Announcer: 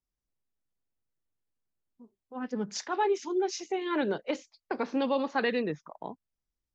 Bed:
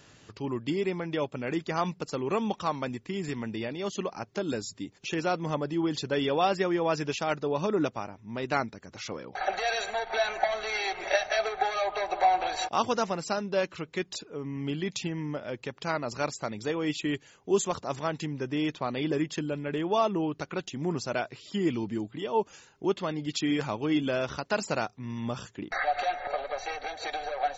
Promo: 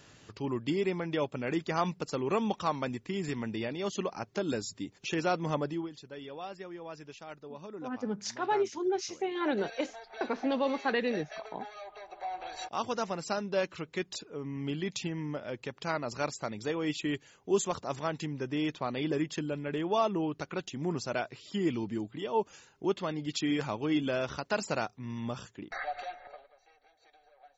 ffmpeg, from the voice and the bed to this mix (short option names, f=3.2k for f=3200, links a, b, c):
-filter_complex "[0:a]adelay=5500,volume=-1.5dB[a];[1:a]volume=13dB,afade=t=out:st=5.64:d=0.26:silence=0.16788,afade=t=in:st=12.22:d=1.15:silence=0.199526,afade=t=out:st=25.16:d=1.36:silence=0.0473151[b];[a][b]amix=inputs=2:normalize=0"